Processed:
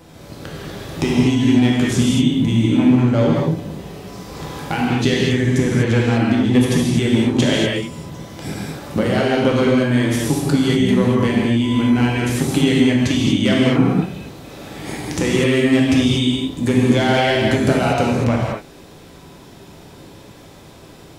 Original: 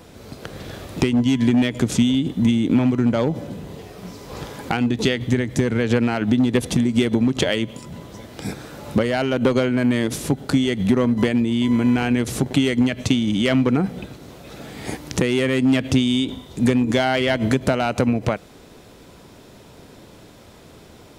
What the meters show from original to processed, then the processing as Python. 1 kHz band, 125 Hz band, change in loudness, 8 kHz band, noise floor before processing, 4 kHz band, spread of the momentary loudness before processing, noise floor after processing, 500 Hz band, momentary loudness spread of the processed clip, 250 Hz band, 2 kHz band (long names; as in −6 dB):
+4.0 dB, +5.5 dB, +3.5 dB, +3.5 dB, −46 dBFS, +4.0 dB, 17 LU, −42 dBFS, +3.5 dB, 17 LU, +3.0 dB, +3.5 dB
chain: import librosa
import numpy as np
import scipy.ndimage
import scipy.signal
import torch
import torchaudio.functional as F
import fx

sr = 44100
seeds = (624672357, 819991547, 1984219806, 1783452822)

y = fx.rev_gated(x, sr, seeds[0], gate_ms=270, shape='flat', drr_db=-4.5)
y = y * 10.0 ** (-2.0 / 20.0)